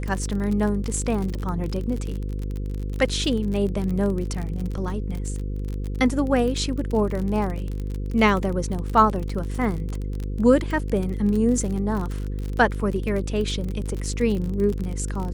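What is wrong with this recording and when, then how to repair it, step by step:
buzz 50 Hz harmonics 10 -28 dBFS
crackle 39 per s -27 dBFS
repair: de-click; de-hum 50 Hz, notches 10

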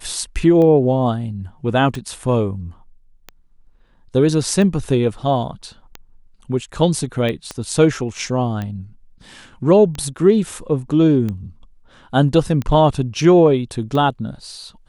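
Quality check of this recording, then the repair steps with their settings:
tick 45 rpm -14 dBFS
7.51 s: pop -13 dBFS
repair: de-click

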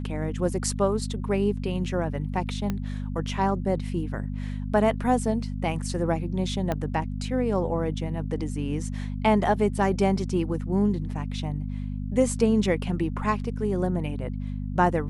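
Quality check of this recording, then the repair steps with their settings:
hum 50 Hz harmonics 5 -31 dBFS
2.70 s: pop -15 dBFS
6.72 s: pop -14 dBFS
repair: de-click; de-hum 50 Hz, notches 5

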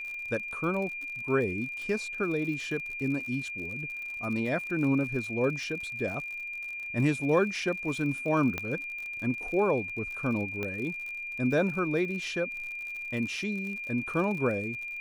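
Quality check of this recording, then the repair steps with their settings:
crackle 60 per s -37 dBFS
whine 2.4 kHz -35 dBFS
8.58 s: pop -17 dBFS
10.63 s: pop -20 dBFS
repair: de-click; band-stop 2.4 kHz, Q 30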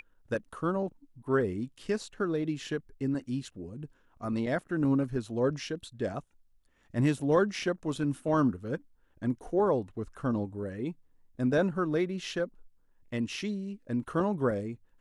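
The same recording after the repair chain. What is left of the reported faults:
nothing left

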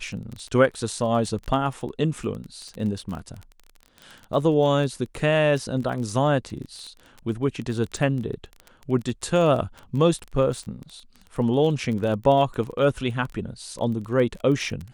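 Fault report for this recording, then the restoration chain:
crackle 21 per s -30 dBFS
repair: de-click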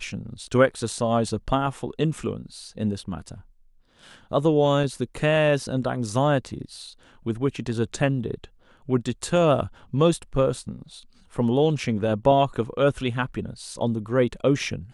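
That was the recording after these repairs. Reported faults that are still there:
nothing left

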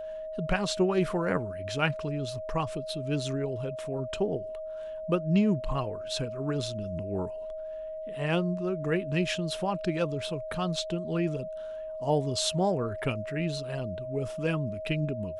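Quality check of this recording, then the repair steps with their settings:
whine 630 Hz -35 dBFS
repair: band-stop 630 Hz, Q 30

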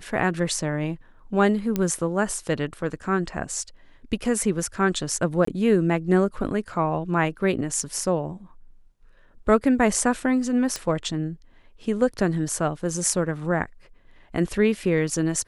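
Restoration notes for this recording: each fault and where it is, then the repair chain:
1.76 s: pop -11 dBFS
5.45–5.47 s: dropout 24 ms
10.76 s: pop -13 dBFS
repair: de-click; interpolate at 5.45 s, 24 ms

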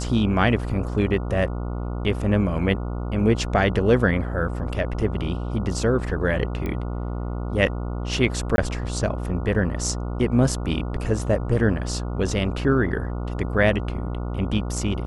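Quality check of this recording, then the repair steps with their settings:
buzz 60 Hz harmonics 24 -28 dBFS
6.66 s: pop -17 dBFS
8.56–8.58 s: dropout 21 ms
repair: de-click; de-hum 60 Hz, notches 24; interpolate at 8.56 s, 21 ms

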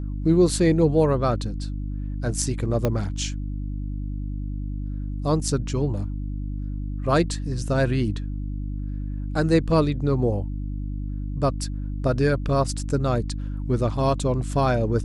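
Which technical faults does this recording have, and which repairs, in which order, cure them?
hum 50 Hz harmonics 6 -29 dBFS
2.85 s: pop -10 dBFS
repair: de-click; de-hum 50 Hz, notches 6

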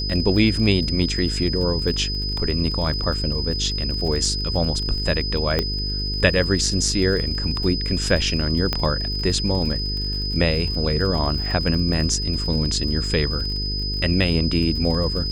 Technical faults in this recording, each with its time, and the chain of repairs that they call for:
buzz 50 Hz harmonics 9 -27 dBFS
crackle 44 per s -29 dBFS
whine 5 kHz -26 dBFS
5.59 s: pop -7 dBFS
8.73 s: pop -8 dBFS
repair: de-click; de-hum 50 Hz, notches 9; band-stop 5 kHz, Q 30

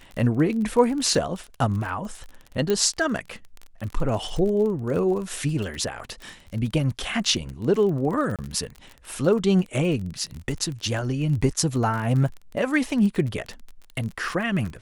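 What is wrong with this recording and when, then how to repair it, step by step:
crackle 31 per s -30 dBFS
2.70 s: pop -11 dBFS
8.36–8.39 s: dropout 27 ms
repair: de-click; interpolate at 8.36 s, 27 ms

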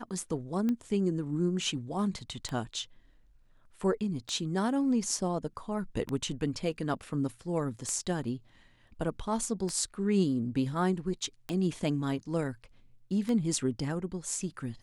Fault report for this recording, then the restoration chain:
tick 33 1/3 rpm -20 dBFS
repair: de-click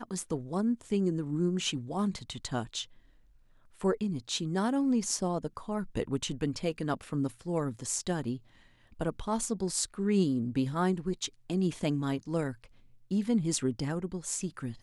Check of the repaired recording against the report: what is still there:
nothing left

